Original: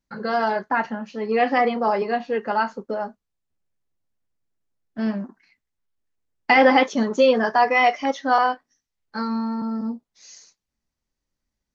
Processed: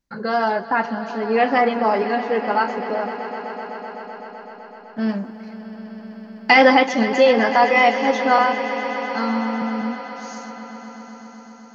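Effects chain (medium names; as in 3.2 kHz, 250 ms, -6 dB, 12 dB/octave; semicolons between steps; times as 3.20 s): 5.09–6.75 s: treble shelf 4 kHz +10.5 dB; on a send: echo with a slow build-up 127 ms, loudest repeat 5, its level -16 dB; on the sum: trim +2 dB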